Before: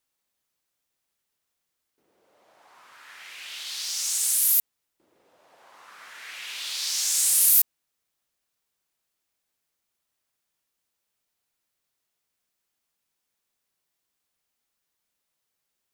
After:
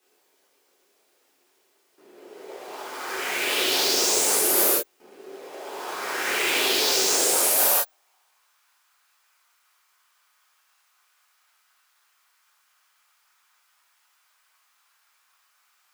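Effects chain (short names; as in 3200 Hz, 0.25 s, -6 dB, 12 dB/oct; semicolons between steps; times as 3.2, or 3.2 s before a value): half-waves squared off; Bessel high-pass 220 Hz; in parallel at -8 dB: decimation with a swept rate 26×, swing 100% 3.9 Hz; on the sum: reverb, pre-delay 3 ms, DRR -6.5 dB; frequency shift -110 Hz; high-pass sweep 390 Hz -> 1200 Hz, 7.17–8.64; reverse; compressor 12:1, threshold -21 dBFS, peak gain reduction 16.5 dB; reverse; gain +3.5 dB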